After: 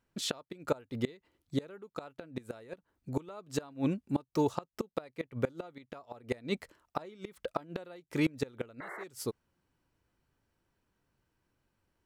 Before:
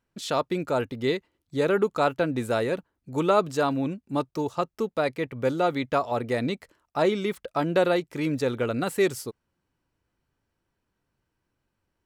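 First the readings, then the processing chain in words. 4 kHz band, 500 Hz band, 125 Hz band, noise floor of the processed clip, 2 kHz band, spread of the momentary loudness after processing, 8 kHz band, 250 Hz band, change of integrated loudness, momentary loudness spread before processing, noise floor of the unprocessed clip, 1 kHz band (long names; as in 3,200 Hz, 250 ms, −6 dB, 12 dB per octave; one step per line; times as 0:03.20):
−7.5 dB, −13.5 dB, −7.5 dB, −83 dBFS, −12.5 dB, 14 LU, −4.5 dB, −8.0 dB, −11.0 dB, 7 LU, −80 dBFS, −14.5 dB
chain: sound drawn into the spectrogram noise, 0:08.80–0:09.04, 310–2,200 Hz −18 dBFS
gate with flip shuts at −18 dBFS, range −26 dB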